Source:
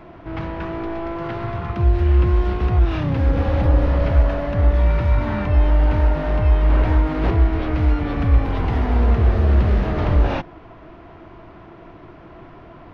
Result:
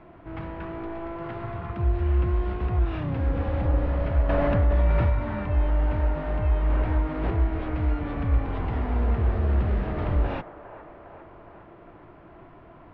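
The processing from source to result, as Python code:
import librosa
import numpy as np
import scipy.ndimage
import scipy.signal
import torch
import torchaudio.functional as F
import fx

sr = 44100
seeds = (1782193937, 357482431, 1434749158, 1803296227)

y = scipy.signal.sosfilt(scipy.signal.butter(2, 3100.0, 'lowpass', fs=sr, output='sos'), x)
y = fx.echo_wet_bandpass(y, sr, ms=407, feedback_pct=65, hz=900.0, wet_db=-11.0)
y = fx.env_flatten(y, sr, amount_pct=70, at=(4.29, 5.1))
y = y * librosa.db_to_amplitude(-7.5)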